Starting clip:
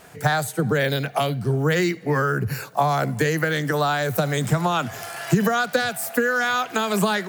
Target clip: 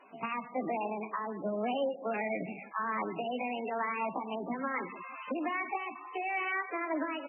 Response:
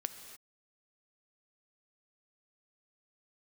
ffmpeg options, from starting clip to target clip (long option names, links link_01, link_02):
-filter_complex "[0:a]highpass=210,tiltshelf=frequency=970:gain=4.5,alimiter=limit=-15dB:level=0:latency=1:release=288,areverse,acompressor=mode=upward:threshold=-37dB:ratio=2.5,areverse,asetrate=68011,aresample=44100,atempo=0.64842,asplit=2[link_01][link_02];[link_02]adelay=160,lowpass=frequency=1000:poles=1,volume=-17.5dB,asplit=2[link_03][link_04];[link_04]adelay=160,lowpass=frequency=1000:poles=1,volume=0.48,asplit=2[link_05][link_06];[link_06]adelay=160,lowpass=frequency=1000:poles=1,volume=0.48,asplit=2[link_07][link_08];[link_08]adelay=160,lowpass=frequency=1000:poles=1,volume=0.48[link_09];[link_01][link_03][link_05][link_07][link_09]amix=inputs=5:normalize=0[link_10];[1:a]atrim=start_sample=2205,atrim=end_sample=6615[link_11];[link_10][link_11]afir=irnorm=-1:irlink=0,volume=-8dB" -ar 22050 -c:a libmp3lame -b:a 8k